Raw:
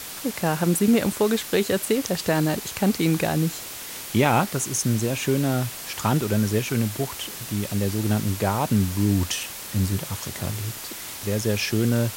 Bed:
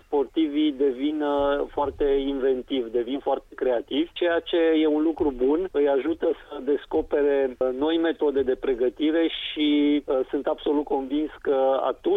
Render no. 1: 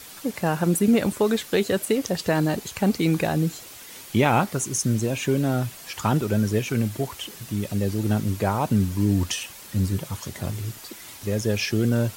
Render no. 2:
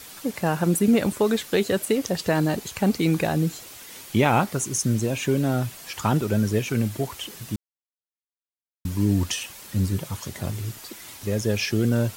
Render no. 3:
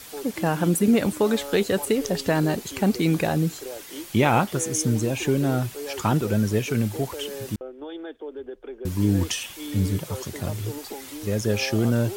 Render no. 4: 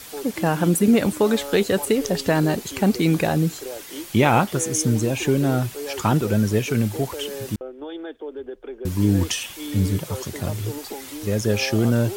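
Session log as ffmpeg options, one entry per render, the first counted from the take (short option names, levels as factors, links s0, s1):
-af "afftdn=nr=8:nf=-36"
-filter_complex "[0:a]asplit=3[s0][s1][s2];[s0]atrim=end=7.56,asetpts=PTS-STARTPTS,afade=t=out:st=7.556:d=0.004:c=hsin[s3];[s1]atrim=start=7.56:end=8.85,asetpts=PTS-STARTPTS,volume=0[s4];[s2]atrim=start=8.85,asetpts=PTS-STARTPTS,afade=t=in:d=0.004:c=hsin[s5];[s3][s4][s5]concat=n=3:v=0:a=1"
-filter_complex "[1:a]volume=0.211[s0];[0:a][s0]amix=inputs=2:normalize=0"
-af "volume=1.33"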